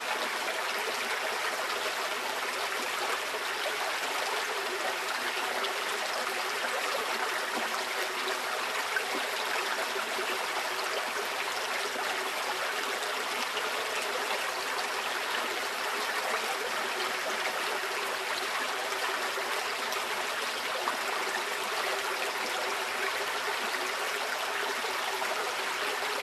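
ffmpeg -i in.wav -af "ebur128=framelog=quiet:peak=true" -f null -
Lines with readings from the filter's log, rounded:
Integrated loudness:
  I:         -30.6 LUFS
  Threshold: -40.6 LUFS
Loudness range:
  LRA:         0.4 LU
  Threshold: -50.6 LUFS
  LRA low:   -30.8 LUFS
  LRA high:  -30.4 LUFS
True peak:
  Peak:      -14.6 dBFS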